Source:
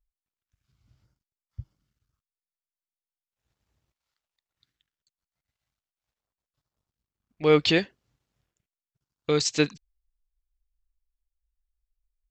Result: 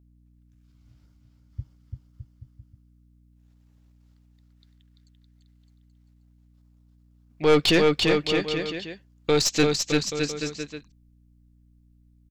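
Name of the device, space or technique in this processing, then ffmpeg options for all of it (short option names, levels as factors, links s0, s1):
valve amplifier with mains hum: -af "aecho=1:1:340|612|829.6|1004|1143:0.631|0.398|0.251|0.158|0.1,aeval=exprs='(tanh(7.94*val(0)+0.4)-tanh(0.4))/7.94':c=same,aeval=exprs='val(0)+0.000794*(sin(2*PI*60*n/s)+sin(2*PI*2*60*n/s)/2+sin(2*PI*3*60*n/s)/3+sin(2*PI*4*60*n/s)/4+sin(2*PI*5*60*n/s)/5)':c=same,volume=1.88"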